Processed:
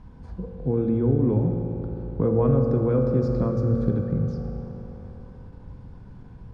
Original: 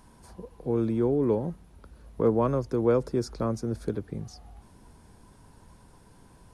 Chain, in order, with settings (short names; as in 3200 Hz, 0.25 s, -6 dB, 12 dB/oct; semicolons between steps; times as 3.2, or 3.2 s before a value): tone controls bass +13 dB, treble -4 dB; compressor 2:1, threshold -21 dBFS, peak gain reduction 5 dB; air absorption 150 m; on a send at -2 dB: reverb RT60 4.1 s, pre-delay 3 ms; on the sum: ending taper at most 240 dB/s